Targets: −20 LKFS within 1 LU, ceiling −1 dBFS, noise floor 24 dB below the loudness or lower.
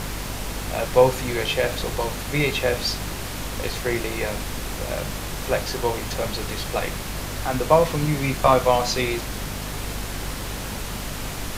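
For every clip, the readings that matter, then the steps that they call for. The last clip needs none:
mains hum 50 Hz; hum harmonics up to 250 Hz; level of the hum −32 dBFS; background noise floor −32 dBFS; target noise floor −49 dBFS; integrated loudness −24.5 LKFS; sample peak −2.5 dBFS; target loudness −20.0 LKFS
→ hum removal 50 Hz, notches 5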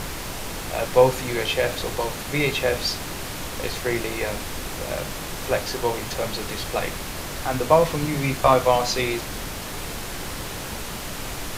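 mains hum none found; background noise floor −33 dBFS; target noise floor −49 dBFS
→ noise reduction from a noise print 16 dB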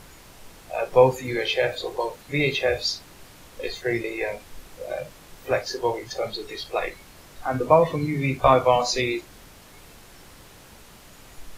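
background noise floor −49 dBFS; integrated loudness −24.0 LKFS; sample peak −3.0 dBFS; target loudness −20.0 LKFS
→ level +4 dB
brickwall limiter −1 dBFS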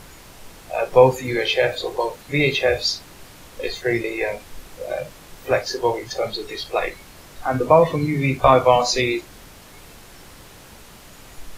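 integrated loudness −20.5 LKFS; sample peak −1.0 dBFS; background noise floor −45 dBFS

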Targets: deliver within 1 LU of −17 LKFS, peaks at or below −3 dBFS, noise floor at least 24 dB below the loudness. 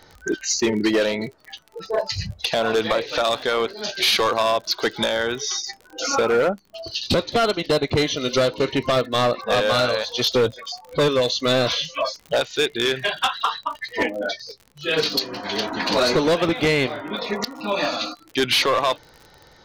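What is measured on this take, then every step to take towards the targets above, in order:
crackle rate 42 per second; integrated loudness −21.5 LKFS; sample peak −12.0 dBFS; target loudness −17.0 LKFS
→ click removal
level +4.5 dB

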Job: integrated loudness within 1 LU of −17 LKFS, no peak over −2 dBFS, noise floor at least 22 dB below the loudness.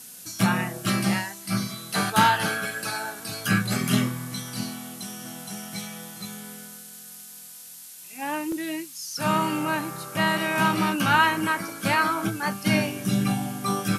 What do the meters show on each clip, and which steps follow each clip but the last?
number of dropouts 1; longest dropout 2.4 ms; background noise floor −44 dBFS; target noise floor −48 dBFS; integrated loudness −25.5 LKFS; sample peak −6.0 dBFS; target loudness −17.0 LKFS
→ repair the gap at 0:08.52, 2.4 ms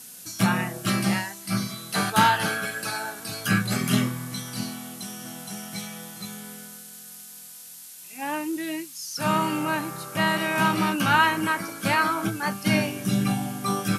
number of dropouts 0; background noise floor −44 dBFS; target noise floor −48 dBFS
→ noise reduction from a noise print 6 dB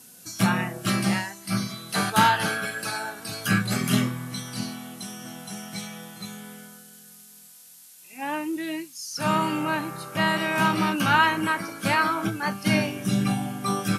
background noise floor −49 dBFS; integrated loudness −25.0 LKFS; sample peak −6.0 dBFS; target loudness −17.0 LKFS
→ level +8 dB
brickwall limiter −2 dBFS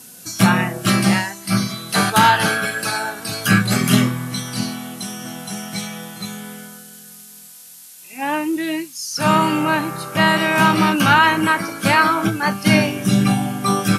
integrated loudness −17.5 LKFS; sample peak −2.0 dBFS; background noise floor −41 dBFS

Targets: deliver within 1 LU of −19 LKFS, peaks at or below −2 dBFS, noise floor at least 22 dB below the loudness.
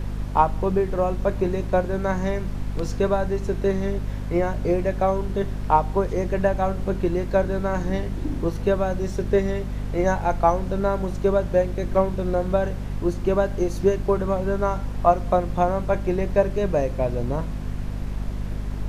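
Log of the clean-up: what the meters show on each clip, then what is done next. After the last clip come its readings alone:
mains hum 50 Hz; hum harmonics up to 250 Hz; level of the hum −27 dBFS; background noise floor −31 dBFS; target noise floor −46 dBFS; integrated loudness −24.0 LKFS; sample peak −4.0 dBFS; target loudness −19.0 LKFS
→ mains-hum notches 50/100/150/200/250 Hz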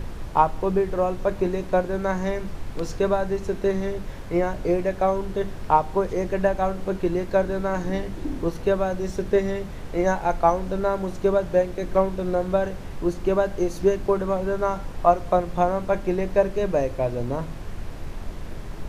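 mains hum none found; background noise floor −35 dBFS; target noise floor −47 dBFS
→ noise reduction from a noise print 12 dB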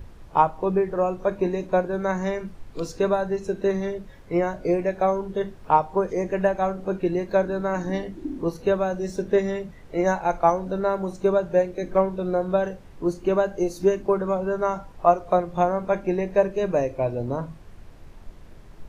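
background noise floor −46 dBFS; target noise floor −47 dBFS
→ noise reduction from a noise print 6 dB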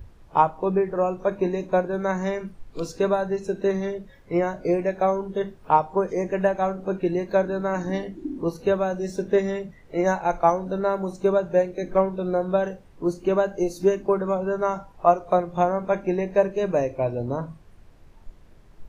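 background noise floor −51 dBFS; integrated loudness −24.5 LKFS; sample peak −4.5 dBFS; target loudness −19.0 LKFS
→ level +5.5 dB
brickwall limiter −2 dBFS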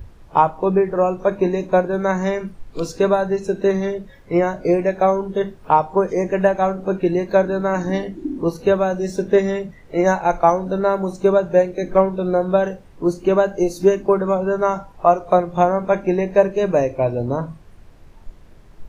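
integrated loudness −19.0 LKFS; sample peak −2.0 dBFS; background noise floor −45 dBFS

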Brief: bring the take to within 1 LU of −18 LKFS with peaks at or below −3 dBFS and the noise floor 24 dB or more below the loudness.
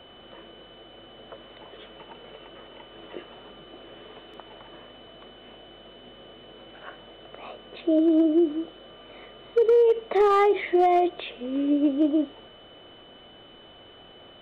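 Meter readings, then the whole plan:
share of clipped samples 0.3%; peaks flattened at −13.5 dBFS; interfering tone 3,000 Hz; level of the tone −51 dBFS; integrated loudness −22.5 LKFS; sample peak −13.5 dBFS; target loudness −18.0 LKFS
→ clipped peaks rebuilt −13.5 dBFS
notch filter 3,000 Hz, Q 30
level +4.5 dB

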